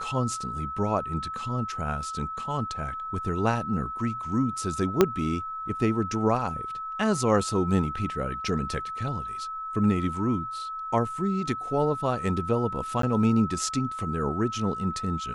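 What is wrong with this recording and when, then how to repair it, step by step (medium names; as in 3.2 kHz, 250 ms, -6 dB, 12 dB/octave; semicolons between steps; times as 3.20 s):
whine 1.3 kHz -32 dBFS
5.01 s: pop -5 dBFS
13.02–13.03 s: dropout 13 ms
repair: de-click; band-stop 1.3 kHz, Q 30; interpolate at 13.02 s, 13 ms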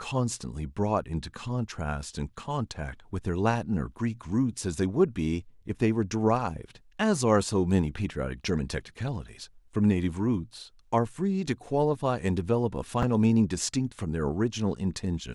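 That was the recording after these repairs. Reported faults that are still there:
5.01 s: pop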